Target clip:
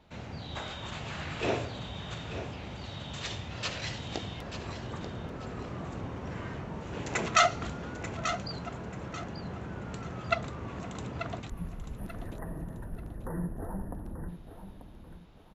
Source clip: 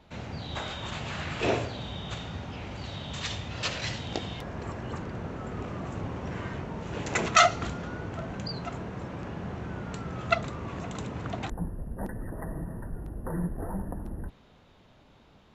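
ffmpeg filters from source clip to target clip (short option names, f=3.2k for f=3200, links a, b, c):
-filter_complex "[0:a]asettb=1/sr,asplit=3[a][b][c];[a]atrim=end=11.404[d];[b]atrim=start=11.4:end=12.14,asetpts=PTS-STARTPTS,afade=t=in:d=0.004:c=qsin,afade=t=out:st=0.736:d=0.004:c=qsin,equalizer=f=840:w=0.48:g=-12[e];[c]atrim=start=12.136[f];[d][e]acrossfade=d=0.004:c1=hsin:c2=qsin[g];[g][f]acrossfade=d=0.004:c1=qsin:c2=hsin,aecho=1:1:887|1774|2661:0.316|0.0949|0.0285,volume=-3.5dB"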